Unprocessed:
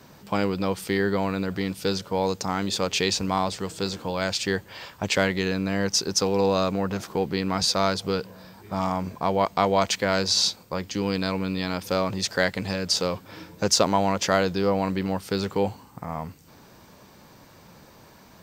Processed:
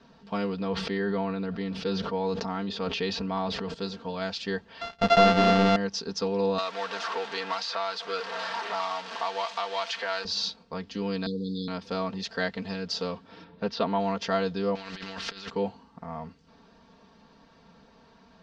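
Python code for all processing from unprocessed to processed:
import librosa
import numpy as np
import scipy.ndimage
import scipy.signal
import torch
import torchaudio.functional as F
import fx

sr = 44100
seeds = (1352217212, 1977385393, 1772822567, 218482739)

y = fx.chain(x, sr, fx.peak_eq(hz=8500.0, db=-10.5, octaves=1.4),
    fx.sustainer(db_per_s=21.0), at=(0.61, 3.74))
y = fx.chain(y, sr, fx.sample_sort(block=64),
    fx.leveller(passes=3), at=(4.81, 5.76))
y = fx.chain(y, sr, fx.zero_step(step_db=-24.5),
    fx.highpass(hz=860.0, slope=12),
    fx.band_squash(depth_pct=100), at=(6.58, 10.25))
y = fx.chain(y, sr, fx.brickwall_bandstop(low_hz=530.0, high_hz=3300.0),
    fx.band_squash(depth_pct=100), at=(11.26, 11.68))
y = fx.chain(y, sr, fx.lowpass(hz=4000.0, slope=24),
    fx.peak_eq(hz=78.0, db=-3.5, octaves=0.36), at=(13.44, 14.0))
y = fx.chain(y, sr, fx.band_shelf(hz=2900.0, db=13.0, octaves=2.6),
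    fx.over_compress(threshold_db=-30.0, ratio=-0.5),
    fx.spectral_comp(ratio=2.0), at=(14.75, 15.5))
y = scipy.signal.sosfilt(scipy.signal.butter(4, 4800.0, 'lowpass', fs=sr, output='sos'), y)
y = fx.peak_eq(y, sr, hz=2200.0, db=-6.0, octaves=0.22)
y = y + 0.8 * np.pad(y, (int(4.4 * sr / 1000.0), 0))[:len(y)]
y = y * 10.0 ** (-7.5 / 20.0)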